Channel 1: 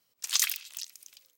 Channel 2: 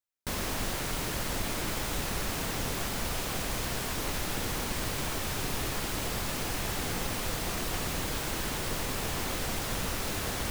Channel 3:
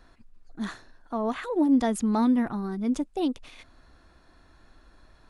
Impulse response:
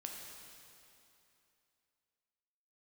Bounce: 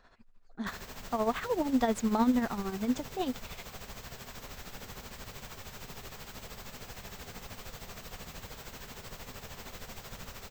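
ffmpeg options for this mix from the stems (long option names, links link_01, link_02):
-filter_complex "[1:a]adelay=400,volume=-12.5dB,asplit=2[link_01][link_02];[link_02]volume=-3.5dB[link_03];[2:a]bass=frequency=250:gain=-7,treble=frequency=4000:gain=-4,volume=2dB[link_04];[3:a]atrim=start_sample=2205[link_05];[link_03][link_05]afir=irnorm=-1:irlink=0[link_06];[link_01][link_04][link_06]amix=inputs=3:normalize=0,superequalizer=6b=0.398:16b=0.316,tremolo=f=13:d=0.62"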